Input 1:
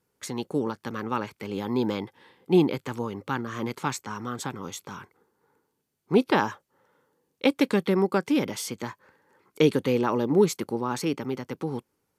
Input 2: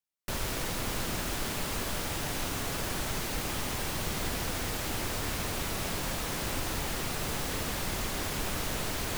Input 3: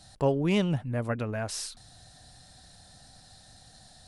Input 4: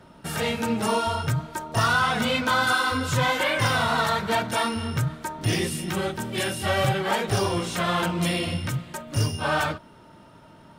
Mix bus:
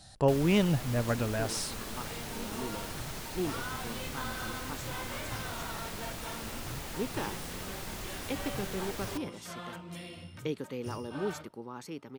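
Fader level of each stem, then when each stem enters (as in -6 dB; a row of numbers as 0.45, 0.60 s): -14.5, -7.5, 0.0, -19.0 dB; 0.85, 0.00, 0.00, 1.70 s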